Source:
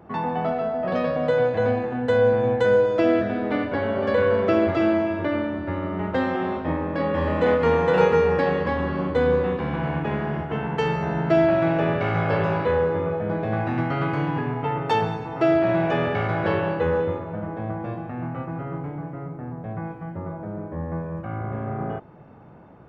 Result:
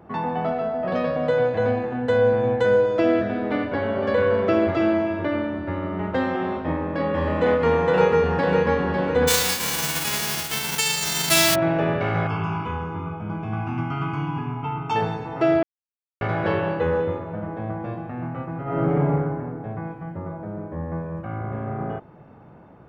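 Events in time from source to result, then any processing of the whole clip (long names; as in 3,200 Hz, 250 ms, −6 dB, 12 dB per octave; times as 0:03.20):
0:07.68–0:08.69: delay throw 550 ms, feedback 45%, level −5.5 dB
0:09.27–0:11.54: spectral envelope flattened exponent 0.1
0:12.27–0:14.96: phaser with its sweep stopped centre 2,700 Hz, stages 8
0:15.63–0:16.21: silence
0:18.63–0:19.09: thrown reverb, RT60 1.9 s, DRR −11 dB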